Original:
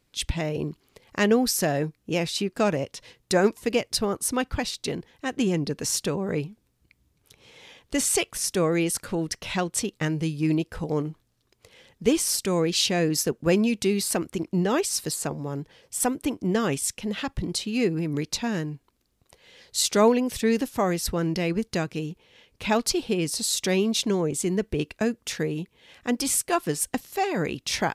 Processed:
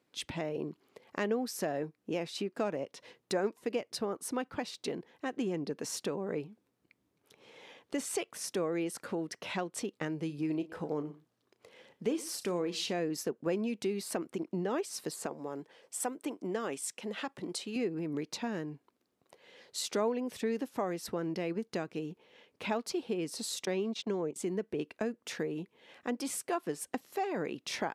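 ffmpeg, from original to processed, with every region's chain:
-filter_complex "[0:a]asettb=1/sr,asplit=3[a][b][c];[a]atrim=end=10.264[d];[b]atrim=start=10.26:end=12.93,asetpts=PTS-STARTPTS,afade=t=in:d=0.004:c=qsin,afade=t=out:st=2.666:d=0.004:c=qsin,asplit=2[e][f];[f]adelay=34,volume=-13dB[g];[e][g]amix=inputs=2:normalize=0,atrim=end_sample=117747,aecho=1:1:118:0.075,atrim=end_sample=117747[h];[c]atrim=start=12.926[i];[d][h]acrossfade=d=0.004:c1=hsin:c2=qsin[j];[j][i]acrossfade=d=0.004:c1=qsin:c2=hsin,asettb=1/sr,asplit=3[k][l][m];[k]atrim=end=15.264[n];[l]atrim=start=15.26:end=17.76,asetpts=PTS-STARTPTS,afade=t=in:d=0.004:c=qsin,afade=t=out:st=2.496:d=0.004:c=qsin,highpass=f=350:p=1,equalizer=f=8.3k:t=o:w=0.57:g=4.5[o];[m]atrim=start=17.756[p];[n][o]acrossfade=d=0.004:c1=hsin:c2=qsin[q];[q][p]acrossfade=d=0.004:c1=qsin:c2=hsin,asettb=1/sr,asplit=3[r][s][t];[r]atrim=end=23.654[u];[s]atrim=start=23.65:end=24.36,asetpts=PTS-STARTPTS,afade=t=in:d=0.004:c=qsin,afade=t=out:st=0.706:d=0.004:c=qsin,agate=range=-21dB:threshold=-27dB:ratio=16:release=100:detection=peak,acrossover=split=6000[v][w];[w]acompressor=threshold=-46dB:ratio=4:attack=1:release=60[x];[v][x]amix=inputs=2:normalize=0,equalizer=f=11k:w=4.6:g=-8[y];[t]atrim=start=24.356[z];[u][y]acrossfade=d=0.004:c1=hsin:c2=qsin[aa];[aa][z]acrossfade=d=0.004:c1=qsin:c2=hsin,highpass=250,highshelf=f=2.4k:g=-11.5,acompressor=threshold=-36dB:ratio=2"

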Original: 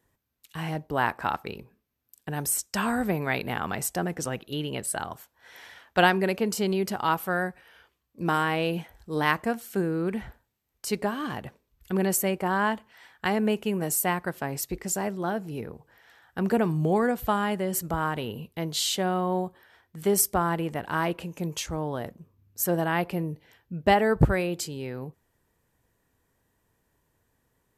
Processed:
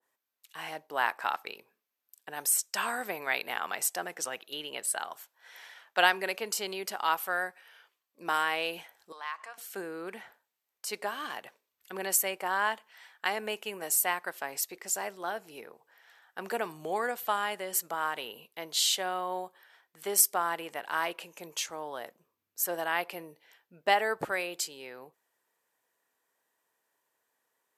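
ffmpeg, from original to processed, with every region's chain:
-filter_complex "[0:a]asettb=1/sr,asplit=3[a][b][c];[a]atrim=end=9.124[d];[b]atrim=start=9.12:end=9.58,asetpts=PTS-STARTPTS,afade=t=in:d=0.004:c=qsin,afade=t=out:st=0.456:d=0.004:c=qsin,acompressor=threshold=-33dB:ratio=4:attack=3.2:release=140:knee=1:detection=peak,highpass=790,lowpass=6.5k,equalizer=f=1.1k:t=o:w=0.27:g=9[e];[c]atrim=start=9.576[f];[d][e]acrossfade=d=0.004:c1=hsin:c2=qsin[g];[g][f]acrossfade=d=0.004:c1=qsin:c2=hsin,highpass=590,adynamicequalizer=threshold=0.0112:dfrequency=1700:dqfactor=0.7:tfrequency=1700:tqfactor=0.7:attack=5:release=100:ratio=0.375:range=2:mode=boostabove:tftype=highshelf,volume=-3dB"

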